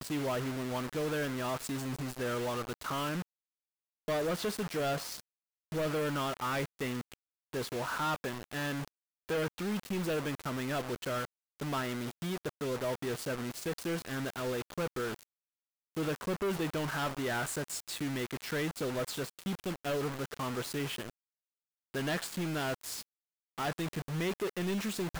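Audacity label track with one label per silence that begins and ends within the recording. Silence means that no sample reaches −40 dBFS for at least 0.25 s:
3.220000	4.080000	silence
5.200000	5.720000	silence
7.140000	7.530000	silence
8.880000	9.290000	silence
11.250000	11.600000	silence
15.230000	15.950000	silence
21.100000	21.940000	silence
23.030000	23.580000	silence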